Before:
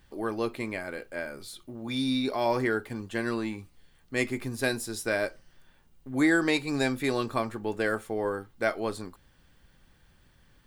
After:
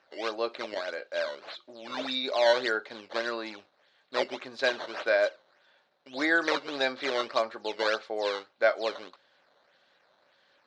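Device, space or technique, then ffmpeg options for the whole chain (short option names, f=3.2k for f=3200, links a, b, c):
circuit-bent sampling toy: -af "acrusher=samples=10:mix=1:aa=0.000001:lfo=1:lforange=16:lforate=1.7,highpass=510,equalizer=f=580:t=q:w=4:g=9,equalizer=f=1.5k:t=q:w=4:g=3,equalizer=f=4k:t=q:w=4:g=8,lowpass=f=5.1k:w=0.5412,lowpass=f=5.1k:w=1.3066"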